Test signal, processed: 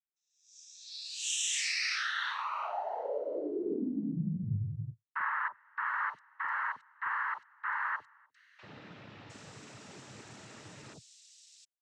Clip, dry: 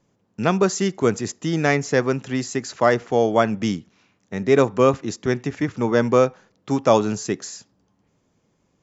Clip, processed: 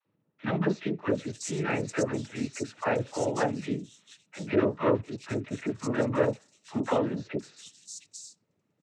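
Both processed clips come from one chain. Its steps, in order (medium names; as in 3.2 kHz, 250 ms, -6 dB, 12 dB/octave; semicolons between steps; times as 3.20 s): noise-vocoded speech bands 12; three bands offset in time mids, lows, highs 40/710 ms, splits 850/3800 Hz; trim -8 dB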